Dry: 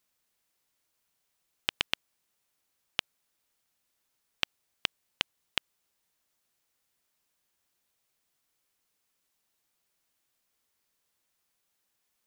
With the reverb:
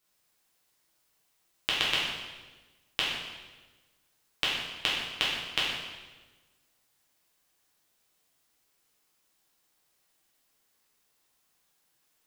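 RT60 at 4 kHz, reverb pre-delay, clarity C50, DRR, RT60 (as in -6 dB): 1.1 s, 5 ms, 0.5 dB, -7.0 dB, 1.3 s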